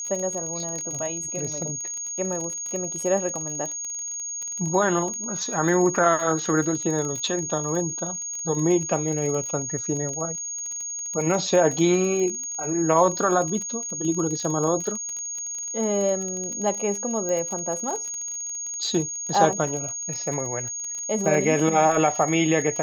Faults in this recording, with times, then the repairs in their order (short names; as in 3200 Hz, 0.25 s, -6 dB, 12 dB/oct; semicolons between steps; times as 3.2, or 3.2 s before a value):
crackle 27/s -28 dBFS
tone 6600 Hz -29 dBFS
17.29 pop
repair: de-click; notch 6600 Hz, Q 30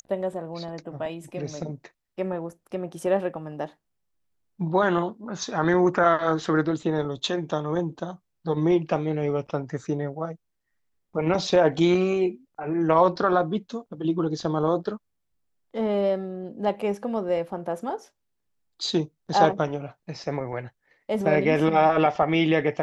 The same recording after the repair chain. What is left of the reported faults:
none